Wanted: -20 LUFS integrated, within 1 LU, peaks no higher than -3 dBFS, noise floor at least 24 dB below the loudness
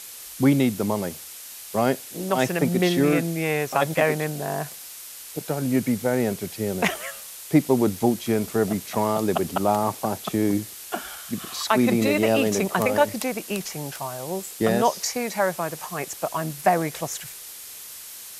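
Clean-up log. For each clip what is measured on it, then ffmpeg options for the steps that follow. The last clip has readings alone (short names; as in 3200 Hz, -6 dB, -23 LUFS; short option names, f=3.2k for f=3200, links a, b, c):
noise floor -40 dBFS; noise floor target -48 dBFS; loudness -24.0 LUFS; peak -4.0 dBFS; loudness target -20.0 LUFS
-> -af "afftdn=nr=8:nf=-40"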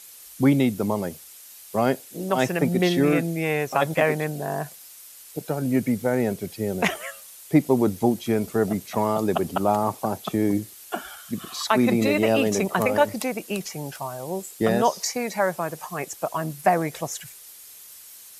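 noise floor -46 dBFS; noise floor target -49 dBFS
-> -af "afftdn=nr=6:nf=-46"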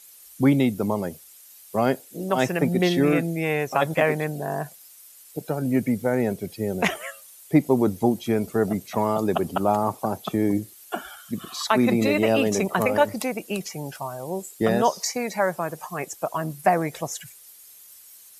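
noise floor -49 dBFS; loudness -24.5 LUFS; peak -4.5 dBFS; loudness target -20.0 LUFS
-> -af "volume=4.5dB,alimiter=limit=-3dB:level=0:latency=1"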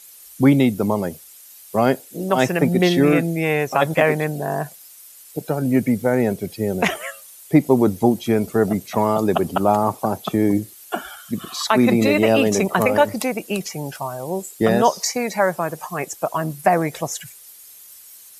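loudness -20.0 LUFS; peak -3.0 dBFS; noise floor -44 dBFS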